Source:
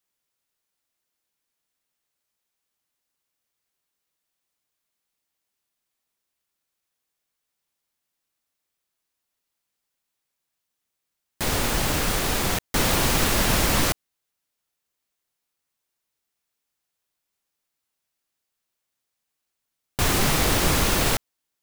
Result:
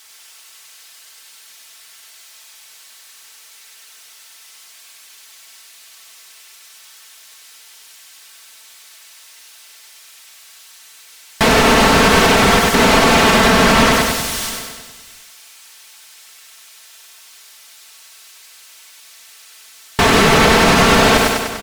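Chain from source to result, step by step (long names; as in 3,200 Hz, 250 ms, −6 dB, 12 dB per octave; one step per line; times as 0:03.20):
spike at every zero crossing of −25.5 dBFS
meter weighting curve A
in parallel at +2.5 dB: compressor whose output falls as the input rises −28 dBFS, ratio −0.5
on the sum: comb filter 4.5 ms, depth 63%
noise gate with hold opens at −15 dBFS
repeating echo 98 ms, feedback 56%, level −4 dB
soft clipping −16 dBFS, distortion −13 dB
RIAA equalisation playback
on a send: single-tap delay 696 ms −22 dB
on the sum: boost into a limiter +13.5 dB
level −1 dB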